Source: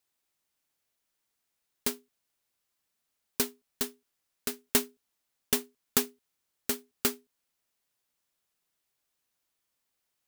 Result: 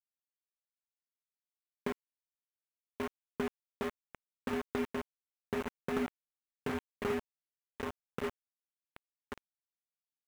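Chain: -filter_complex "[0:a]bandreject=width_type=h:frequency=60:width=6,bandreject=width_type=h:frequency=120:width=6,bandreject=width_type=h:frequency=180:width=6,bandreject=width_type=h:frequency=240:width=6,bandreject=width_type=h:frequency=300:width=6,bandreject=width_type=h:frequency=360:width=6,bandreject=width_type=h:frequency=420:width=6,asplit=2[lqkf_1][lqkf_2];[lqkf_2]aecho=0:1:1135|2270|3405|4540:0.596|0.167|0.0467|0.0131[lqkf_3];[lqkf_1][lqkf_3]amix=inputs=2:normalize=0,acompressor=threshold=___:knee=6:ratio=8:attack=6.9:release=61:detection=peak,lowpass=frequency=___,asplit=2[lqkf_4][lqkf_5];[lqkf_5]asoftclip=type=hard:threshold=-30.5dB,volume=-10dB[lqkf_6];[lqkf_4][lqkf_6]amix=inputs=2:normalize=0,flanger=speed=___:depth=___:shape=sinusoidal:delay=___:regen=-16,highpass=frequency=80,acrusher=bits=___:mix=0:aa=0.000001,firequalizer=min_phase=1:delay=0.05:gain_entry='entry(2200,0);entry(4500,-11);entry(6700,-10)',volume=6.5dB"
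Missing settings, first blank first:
-32dB, 1200, 0.64, 7.2, 2.6, 6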